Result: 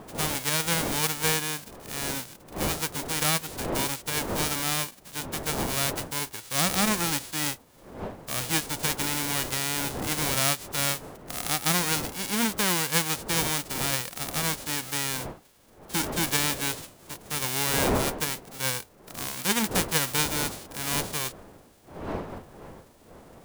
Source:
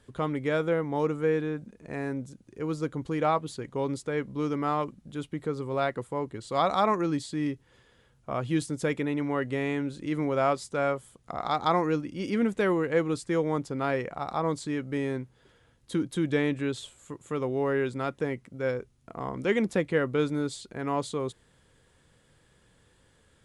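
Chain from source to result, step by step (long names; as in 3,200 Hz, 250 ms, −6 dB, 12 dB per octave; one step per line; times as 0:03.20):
spectral envelope flattened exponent 0.1
wind on the microphone 630 Hz −38 dBFS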